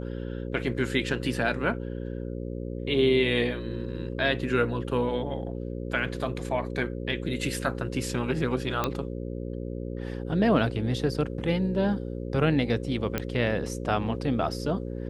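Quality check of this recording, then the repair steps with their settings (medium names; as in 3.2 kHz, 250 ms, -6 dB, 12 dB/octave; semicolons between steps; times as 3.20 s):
buzz 60 Hz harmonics 9 -34 dBFS
8.84 s: pop -11 dBFS
13.18 s: pop -13 dBFS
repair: de-click; de-hum 60 Hz, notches 9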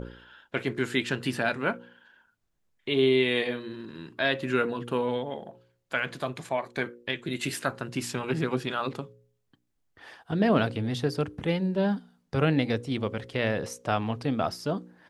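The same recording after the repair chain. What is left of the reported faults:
nothing left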